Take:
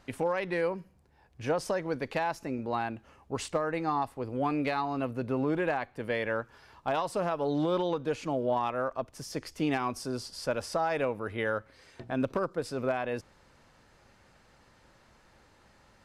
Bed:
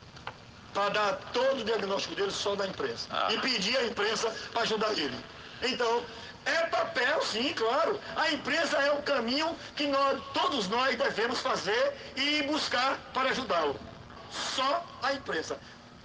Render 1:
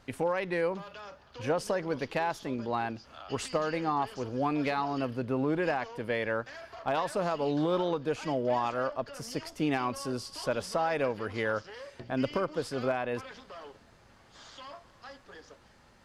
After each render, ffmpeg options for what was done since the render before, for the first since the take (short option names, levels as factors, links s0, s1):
-filter_complex "[1:a]volume=0.126[s0];[0:a][s0]amix=inputs=2:normalize=0"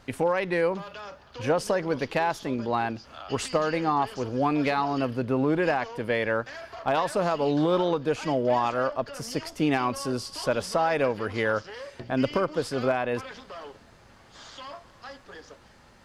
-af "volume=1.78"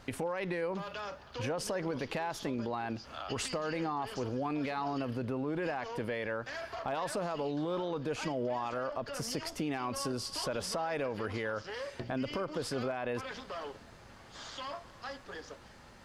-af "alimiter=limit=0.0794:level=0:latency=1:release=36,acompressor=threshold=0.02:ratio=2"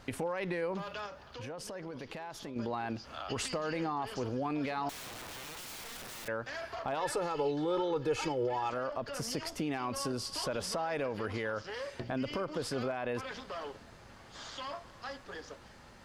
-filter_complex "[0:a]asettb=1/sr,asplit=3[s0][s1][s2];[s0]atrim=end=1.064[s3];[s1]atrim=start=1.06:end=2.56,asetpts=PTS-STARTPTS,afade=t=in:d=0.004:c=qsin,afade=t=out:st=1.496:d=0.004:c=qsin,acompressor=threshold=0.00562:ratio=2:attack=3.2:release=140:knee=1:detection=peak[s4];[s2]atrim=start=2.556[s5];[s3][s4]acrossfade=d=0.004:c1=hsin:c2=qsin[s6];[s6][s5]acrossfade=d=0.004:c1=qsin:c2=hsin,asettb=1/sr,asplit=3[s7][s8][s9];[s7]atrim=end=4.894[s10];[s8]atrim=start=4.89:end=6.28,asetpts=PTS-STARTPTS,afade=t=in:d=0.004:c=qsin,afade=t=out:st=1.386:d=0.004:c=qsin,aeval=exprs='(mod(106*val(0)+1,2)-1)/106':c=same[s11];[s9]atrim=start=6.276[s12];[s10][s11]acrossfade=d=0.004:c1=hsin:c2=qsin[s13];[s13][s12]acrossfade=d=0.004:c1=qsin:c2=hsin,asettb=1/sr,asplit=3[s14][s15][s16];[s14]atrim=end=7.004[s17];[s15]atrim=start=7:end=8.7,asetpts=PTS-STARTPTS,afade=t=in:d=0.004:c=qsin,afade=t=out:st=1.696:d=0.004:c=qsin,aecho=1:1:2.3:0.83,atrim=end_sample=74970[s18];[s16]atrim=start=8.696[s19];[s17][s18]acrossfade=d=0.004:c1=hsin:c2=qsin[s20];[s20][s19]acrossfade=d=0.004:c1=qsin:c2=hsin"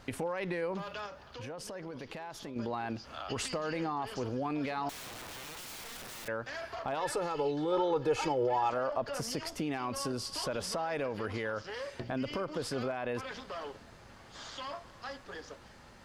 -filter_complex "[0:a]asettb=1/sr,asplit=3[s0][s1][s2];[s0]atrim=end=7.724[s3];[s1]atrim=start=7.72:end=9.21,asetpts=PTS-STARTPTS,afade=t=in:d=0.004:c=qsin,afade=t=out:st=1.486:d=0.004:c=qsin,equalizer=f=750:w=1.2:g=5.5[s4];[s2]atrim=start=9.206[s5];[s3][s4]acrossfade=d=0.004:c1=hsin:c2=qsin[s6];[s6][s5]acrossfade=d=0.004:c1=qsin:c2=hsin"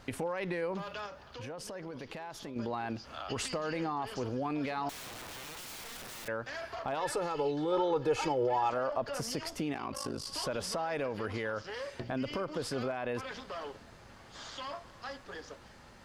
-filter_complex "[0:a]asettb=1/sr,asplit=3[s0][s1][s2];[s0]atrim=end=9.734[s3];[s1]atrim=start=9.73:end=10.27,asetpts=PTS-STARTPTS,afade=t=in:d=0.004:c=qsin,afade=t=out:st=0.536:d=0.004:c=qsin,aeval=exprs='val(0)*sin(2*PI*26*n/s)':c=same[s4];[s2]atrim=start=10.266[s5];[s3][s4]acrossfade=d=0.004:c1=hsin:c2=qsin[s6];[s6][s5]acrossfade=d=0.004:c1=qsin:c2=hsin"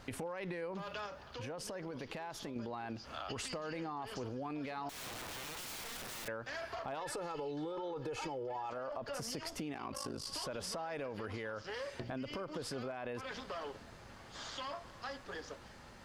-af "alimiter=level_in=1.41:limit=0.0631:level=0:latency=1:release=17,volume=0.708,acompressor=threshold=0.0126:ratio=6"